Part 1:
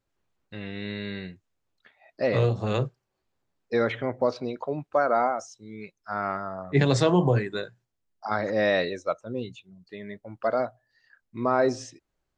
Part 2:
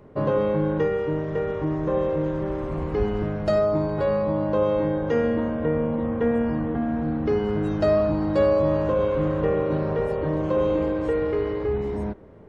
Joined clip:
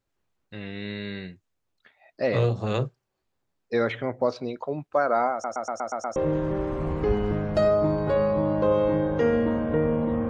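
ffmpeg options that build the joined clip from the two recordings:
-filter_complex "[0:a]apad=whole_dur=10.29,atrim=end=10.29,asplit=7[s0][s1][s2][s3][s4][s5][s6];[s0]atrim=end=5.442[s7];[s1]atrim=start=5.318:end=5.442[s8];[s2]atrim=start=5.318:end=5.442[s9];[s3]atrim=start=5.318:end=5.442[s10];[s4]atrim=start=5.318:end=5.442[s11];[s5]atrim=start=5.318:end=5.442[s12];[s6]atrim=start=5.318:end=5.442[s13];[1:a]atrim=start=2.068:end=6.2[s14];[s7][s8]acrossfade=d=0.004:c1=hsin:c2=hsin[s15];[s15][s9]acrossfade=d=0.004:c1=hsin:c2=hsin[s16];[s16][s10]acrossfade=d=0.004:c1=hsin:c2=hsin[s17];[s17][s11]acrossfade=d=0.004:c1=hsin:c2=hsin[s18];[s18][s12]acrossfade=d=0.004:c1=hsin:c2=hsin[s19];[s19][s13]acrossfade=d=0.004:c1=hsin:c2=hsin[s20];[s20][s14]acrossfade=d=0.004:c1=hsin:c2=hsin"

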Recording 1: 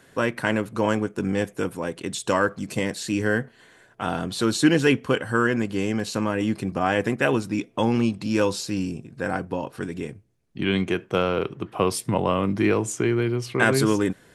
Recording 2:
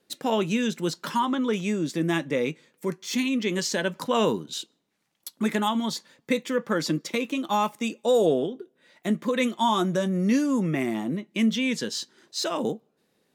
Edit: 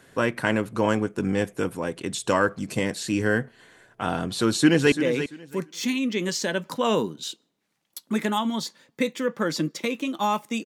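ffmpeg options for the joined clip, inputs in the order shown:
-filter_complex "[0:a]apad=whole_dur=10.65,atrim=end=10.65,atrim=end=4.922[s0];[1:a]atrim=start=2.218:end=7.95[s1];[s0][s1]acrossfade=d=0.004:c1=hsin:c2=hsin,asplit=2[s2][s3];[s3]afade=t=in:st=4.5:d=0.01,afade=t=out:st=4.92:d=0.01,aecho=0:1:340|680|1020:0.298538|0.0597077|0.0119415[s4];[s2][s4]amix=inputs=2:normalize=0"

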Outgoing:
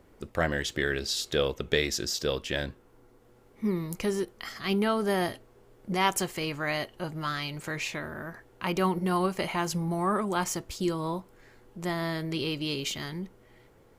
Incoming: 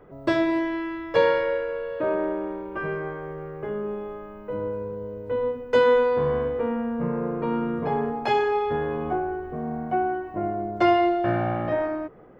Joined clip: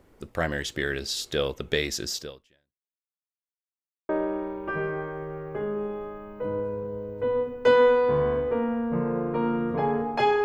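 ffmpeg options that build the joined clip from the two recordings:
-filter_complex "[0:a]apad=whole_dur=10.44,atrim=end=10.44,asplit=2[s0][s1];[s0]atrim=end=3.22,asetpts=PTS-STARTPTS,afade=t=out:st=2.17:d=1.05:c=exp[s2];[s1]atrim=start=3.22:end=4.09,asetpts=PTS-STARTPTS,volume=0[s3];[1:a]atrim=start=2.17:end=8.52,asetpts=PTS-STARTPTS,afade=t=in:d=0.004:c=hsin[s4];[s2][s3][s4]concat=n=3:v=0:a=1"

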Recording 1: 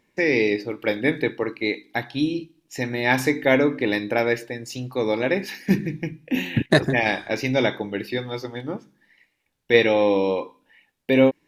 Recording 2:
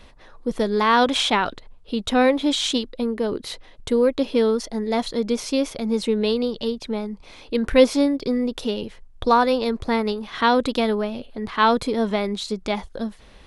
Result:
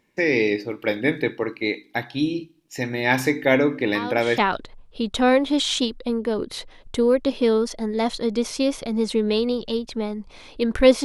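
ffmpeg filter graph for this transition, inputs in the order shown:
-filter_complex "[1:a]asplit=2[s0][s1];[0:a]apad=whole_dur=11.04,atrim=end=11.04,atrim=end=4.382[s2];[s1]atrim=start=1.308:end=7.97[s3];[s0]atrim=start=0.88:end=1.31,asetpts=PTS-STARTPTS,volume=0.188,afade=t=in:d=0.004:c=hsin,afade=t=out:st=0.426:d=0.004:c=hsin,adelay=3950[s4];[s2][s3]acrossfade=d=0.004:c1=hsin:c2=hsin[s5];[s5][s4]amix=inputs=2:normalize=0"

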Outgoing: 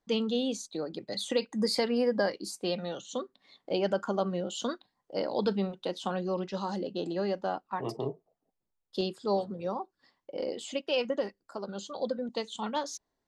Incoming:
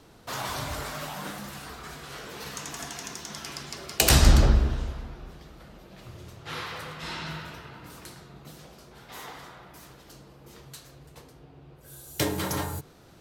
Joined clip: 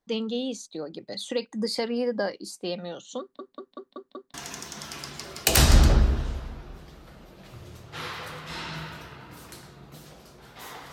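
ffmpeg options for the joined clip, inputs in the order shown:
-filter_complex "[0:a]apad=whole_dur=10.92,atrim=end=10.92,asplit=6[s0][s1][s2][s3][s4][s5];[s0]atrim=end=3.392[s6];[s1]atrim=start=3.198:end=3.392[s7];[s2]atrim=start=3.198:end=3.392[s8];[s3]atrim=start=3.198:end=3.392[s9];[s4]atrim=start=3.198:end=3.392[s10];[s5]atrim=start=3.198:end=3.392[s11];[1:a]atrim=start=2.868:end=9.45[s12];[s6][s7]acrossfade=d=0.004:c1=hsin:c2=hsin[s13];[s13][s8]acrossfade=d=0.004:c1=hsin:c2=hsin[s14];[s14][s9]acrossfade=d=0.004:c1=hsin:c2=hsin[s15];[s15][s10]acrossfade=d=0.004:c1=hsin:c2=hsin[s16];[s16][s11]acrossfade=d=0.004:c1=hsin:c2=hsin[s17];[s17][s12]acrossfade=d=0.004:c1=hsin:c2=hsin"

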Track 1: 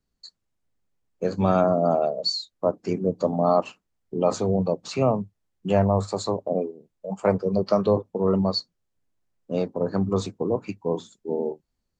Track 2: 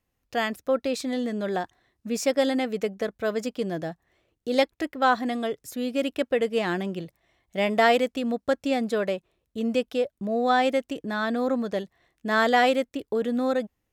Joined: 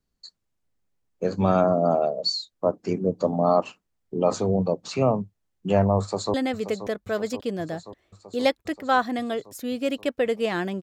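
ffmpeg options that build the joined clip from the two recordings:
-filter_complex "[0:a]apad=whole_dur=10.82,atrim=end=10.82,atrim=end=6.342[s0];[1:a]atrim=start=2.468:end=6.95[s1];[s0][s1]acrossfade=d=0.004:c1=hsin:c2=hsin,asplit=2[s2][s3];[s3]afade=t=in:st=6:d=0.01,afade=t=out:st=6.34:d=0.01,aecho=0:1:530|1060|1590|2120|2650|3180|3710|4240|4770|5300|5830|6360:0.281838|0.211379|0.158534|0.118901|0.0891754|0.0668815|0.0501612|0.0376209|0.0282157|0.0211617|0.0158713|0.0119035[s4];[s2][s4]amix=inputs=2:normalize=0"

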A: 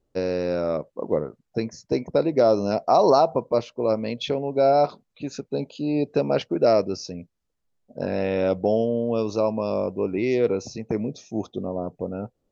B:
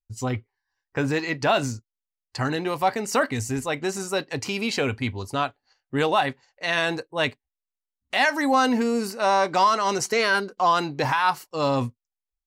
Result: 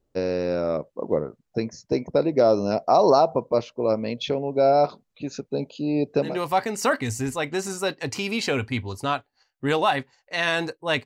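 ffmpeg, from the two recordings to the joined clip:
-filter_complex "[0:a]apad=whole_dur=11.05,atrim=end=11.05,atrim=end=6.39,asetpts=PTS-STARTPTS[s0];[1:a]atrim=start=2.49:end=7.35,asetpts=PTS-STARTPTS[s1];[s0][s1]acrossfade=d=0.2:c1=tri:c2=tri"

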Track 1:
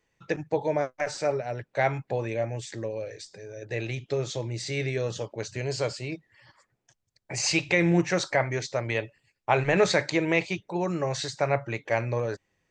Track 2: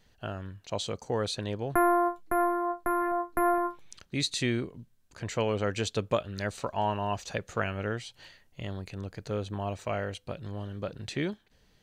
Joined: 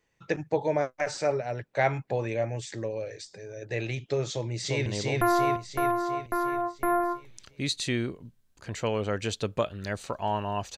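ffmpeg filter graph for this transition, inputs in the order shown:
-filter_complex "[0:a]apad=whole_dur=10.77,atrim=end=10.77,atrim=end=4.862[s0];[1:a]atrim=start=1.398:end=7.31[s1];[s0][s1]acrossfade=d=0.004:c1=hsin:c2=hsin,asplit=2[s2][s3];[s3]afade=t=in:st=4.29:d=0.01,afade=t=out:st=4.86:d=0.01,aecho=0:1:350|700|1050|1400|1750|2100|2450|2800|3150:0.891251|0.534751|0.32085|0.19251|0.115506|0.0693037|0.0415822|0.0249493|0.0149696[s4];[s2][s4]amix=inputs=2:normalize=0"

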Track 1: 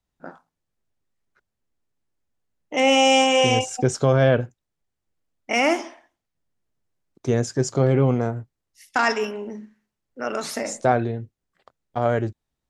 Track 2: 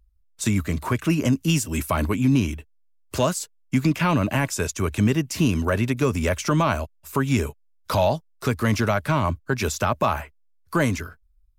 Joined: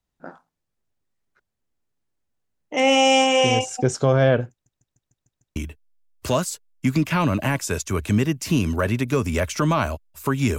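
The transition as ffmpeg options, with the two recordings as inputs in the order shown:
-filter_complex "[0:a]apad=whole_dur=10.58,atrim=end=10.58,asplit=7[s0][s1][s2][s3][s4][s5][s6];[s0]atrim=end=4.662[s7];[s1]atrim=start=4.508:end=4.662[s8];[s2]atrim=start=4.508:end=4.662[s9];[s3]atrim=start=4.508:end=4.662[s10];[s4]atrim=start=4.508:end=4.662[s11];[s5]atrim=start=4.508:end=4.662[s12];[s6]atrim=start=4.508:end=4.662[s13];[1:a]atrim=start=2.448:end=7.47[s14];[s7][s8]acrossfade=d=0.004:c1=hsin:c2=hsin[s15];[s15][s9]acrossfade=d=0.004:c1=hsin:c2=hsin[s16];[s16][s10]acrossfade=d=0.004:c1=hsin:c2=hsin[s17];[s17][s11]acrossfade=d=0.004:c1=hsin:c2=hsin[s18];[s18][s12]acrossfade=d=0.004:c1=hsin:c2=hsin[s19];[s19][s13]acrossfade=d=0.004:c1=hsin:c2=hsin[s20];[s20][s14]acrossfade=d=0.004:c1=hsin:c2=hsin"

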